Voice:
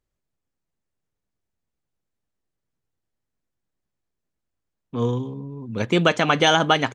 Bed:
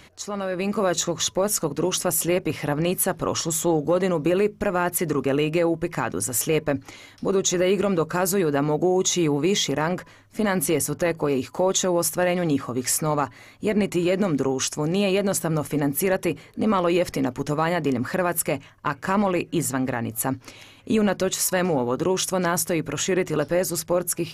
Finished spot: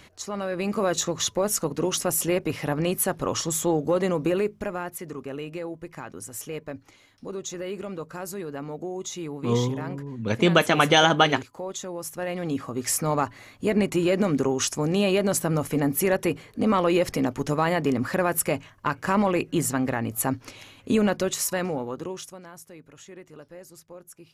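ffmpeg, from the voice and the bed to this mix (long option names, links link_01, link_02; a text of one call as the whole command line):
ffmpeg -i stem1.wav -i stem2.wav -filter_complex "[0:a]adelay=4500,volume=-0.5dB[link_01];[1:a]volume=10dB,afade=type=out:start_time=4.21:duration=0.75:silence=0.298538,afade=type=in:start_time=12.02:duration=1.24:silence=0.251189,afade=type=out:start_time=20.96:duration=1.45:silence=0.0841395[link_02];[link_01][link_02]amix=inputs=2:normalize=0" out.wav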